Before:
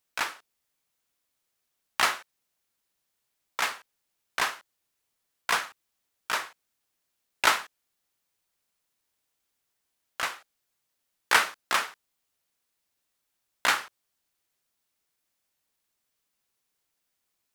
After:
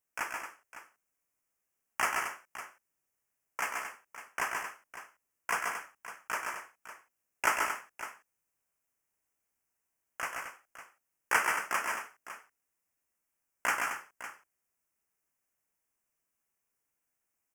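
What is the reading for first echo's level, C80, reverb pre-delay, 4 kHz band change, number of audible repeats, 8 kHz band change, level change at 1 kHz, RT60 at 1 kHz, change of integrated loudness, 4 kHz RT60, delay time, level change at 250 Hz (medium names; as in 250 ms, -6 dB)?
-5.5 dB, no reverb, no reverb, -13.5 dB, 3, -4.0 dB, -3.5 dB, no reverb, -6.0 dB, no reverb, 132 ms, -3.0 dB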